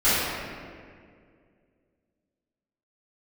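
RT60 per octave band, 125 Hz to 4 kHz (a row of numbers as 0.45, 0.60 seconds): 2.5, 2.6, 2.4, 1.8, 1.8, 1.3 seconds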